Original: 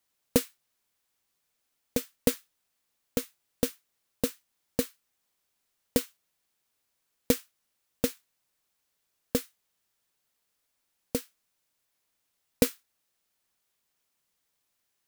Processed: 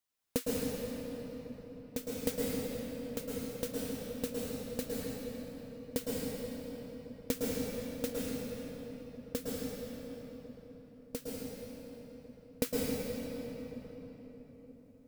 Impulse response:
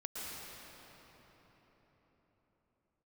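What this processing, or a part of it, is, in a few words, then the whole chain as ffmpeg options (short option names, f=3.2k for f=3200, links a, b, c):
cathedral: -filter_complex "[1:a]atrim=start_sample=2205[a];[0:a][a]afir=irnorm=-1:irlink=0,volume=-4.5dB"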